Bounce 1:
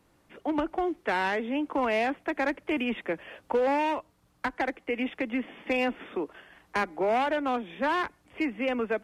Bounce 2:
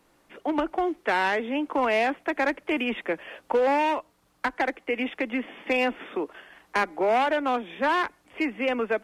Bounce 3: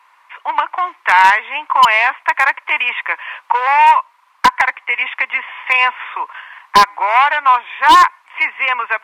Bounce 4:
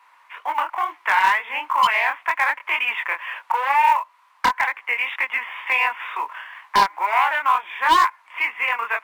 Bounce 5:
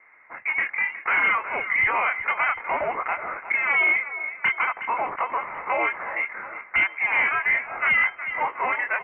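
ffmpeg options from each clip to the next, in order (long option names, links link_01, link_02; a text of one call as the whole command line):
ffmpeg -i in.wav -af "equalizer=frequency=89:width=0.61:gain=-10.5,volume=4dB" out.wav
ffmpeg -i in.wav -af "highpass=frequency=1000:width_type=q:width=9.5,equalizer=frequency=2200:width=1:gain=14.5,aeval=exprs='0.841*(abs(mod(val(0)/0.841+3,4)-2)-1)':channel_layout=same" out.wav
ffmpeg -i in.wav -filter_complex "[0:a]asplit=2[link_01][link_02];[link_02]acompressor=threshold=-18dB:ratio=12,volume=2dB[link_03];[link_01][link_03]amix=inputs=2:normalize=0,flanger=delay=19:depth=7.4:speed=2.1,acrusher=bits=8:mode=log:mix=0:aa=0.000001,volume=-7dB" out.wav
ffmpeg -i in.wav -af "aecho=1:1:364|728|1092|1456:0.168|0.0806|0.0387|0.0186,asoftclip=type=tanh:threshold=-16dB,lowpass=frequency=2600:width_type=q:width=0.5098,lowpass=frequency=2600:width_type=q:width=0.6013,lowpass=frequency=2600:width_type=q:width=0.9,lowpass=frequency=2600:width_type=q:width=2.563,afreqshift=-3100" out.wav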